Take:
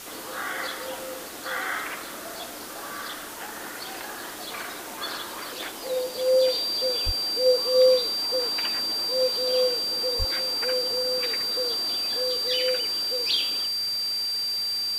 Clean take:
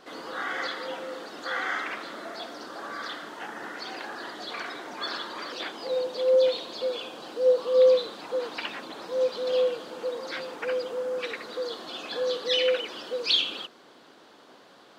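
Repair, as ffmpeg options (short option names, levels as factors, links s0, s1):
-filter_complex "[0:a]bandreject=f=4700:w=30,asplit=3[s0][s1][s2];[s0]afade=t=out:st=7.05:d=0.02[s3];[s1]highpass=f=140:w=0.5412,highpass=f=140:w=1.3066,afade=t=in:st=7.05:d=0.02,afade=t=out:st=7.17:d=0.02[s4];[s2]afade=t=in:st=7.17:d=0.02[s5];[s3][s4][s5]amix=inputs=3:normalize=0,asplit=3[s6][s7][s8];[s6]afade=t=out:st=10.18:d=0.02[s9];[s7]highpass=f=140:w=0.5412,highpass=f=140:w=1.3066,afade=t=in:st=10.18:d=0.02,afade=t=out:st=10.3:d=0.02[s10];[s8]afade=t=in:st=10.3:d=0.02[s11];[s9][s10][s11]amix=inputs=3:normalize=0,afwtdn=0.01,asetnsamples=n=441:p=0,asendcmd='11.95 volume volume 3dB',volume=1"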